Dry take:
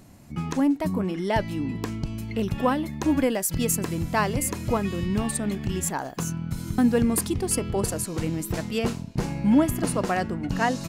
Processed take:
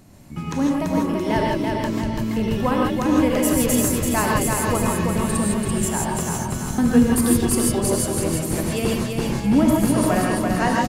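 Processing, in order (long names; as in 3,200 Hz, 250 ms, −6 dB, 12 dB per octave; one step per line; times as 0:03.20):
repeating echo 336 ms, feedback 48%, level −4 dB
reverb whose tail is shaped and stops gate 180 ms rising, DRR −1 dB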